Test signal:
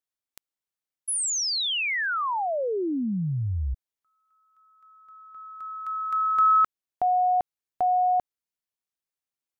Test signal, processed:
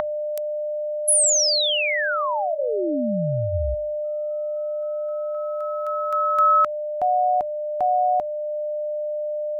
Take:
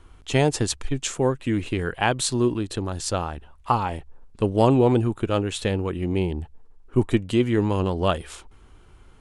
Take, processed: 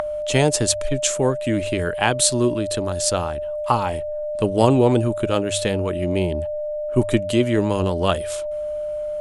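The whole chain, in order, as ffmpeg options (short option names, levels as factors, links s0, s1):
-filter_complex "[0:a]aemphasis=mode=production:type=cd,aeval=exprs='val(0)+0.0447*sin(2*PI*600*n/s)':c=same,acrossover=split=620|2900[s0][s1][s2];[s1]acompressor=mode=upward:threshold=0.0316:ratio=2.5:attack=23:release=635:knee=2.83:detection=peak[s3];[s0][s3][s2]amix=inputs=3:normalize=0,bandreject=f=50.47:t=h:w=4,bandreject=f=100.94:t=h:w=4,volume=1.26"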